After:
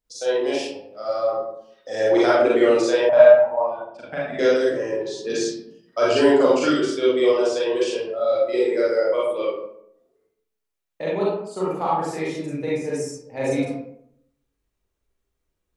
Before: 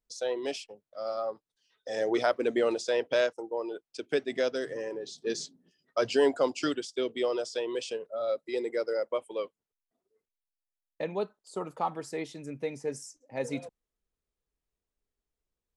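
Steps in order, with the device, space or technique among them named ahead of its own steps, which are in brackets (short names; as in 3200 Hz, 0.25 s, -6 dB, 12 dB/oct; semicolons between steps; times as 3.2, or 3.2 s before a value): bathroom (reverb RT60 0.70 s, pre-delay 36 ms, DRR -7.5 dB); 3.09–4.39 EQ curve 230 Hz 0 dB, 400 Hz -28 dB, 620 Hz +10 dB, 6300 Hz -20 dB; gain +2 dB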